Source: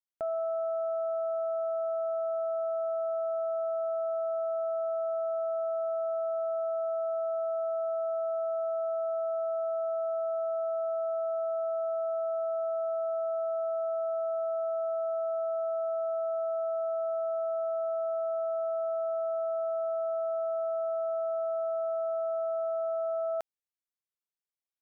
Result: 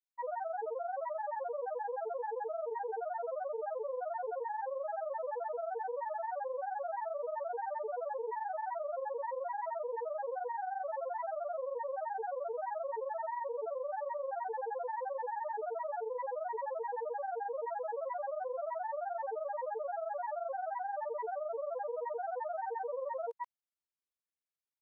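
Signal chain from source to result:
granular cloud 62 ms, grains 23 per second, pitch spread up and down by 7 semitones
level −4 dB

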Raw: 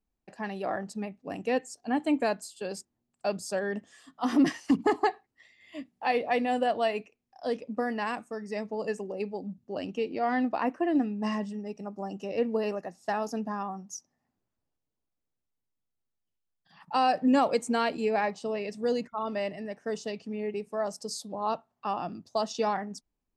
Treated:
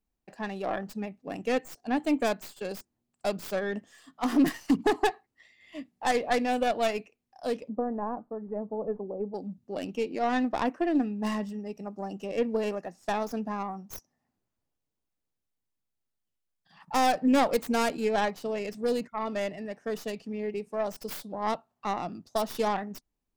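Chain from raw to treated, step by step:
stylus tracing distortion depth 0.24 ms
0:07.69–0:09.34: low-pass filter 1,000 Hz 24 dB per octave

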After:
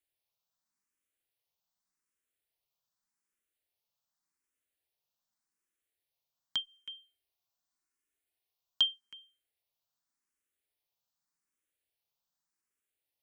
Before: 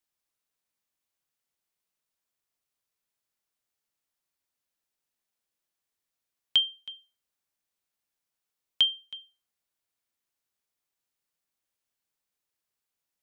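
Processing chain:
0:06.56–0:08.94: comb filter 2.8 ms, depth 41%
frequency shifter mixed with the dry sound +0.85 Hz

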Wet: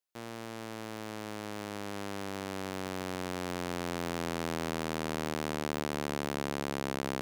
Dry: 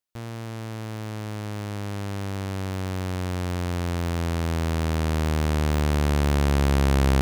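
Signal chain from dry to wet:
high-pass filter 240 Hz 12 dB per octave
brickwall limiter −15 dBFS, peak gain reduction 6.5 dB
level −3 dB

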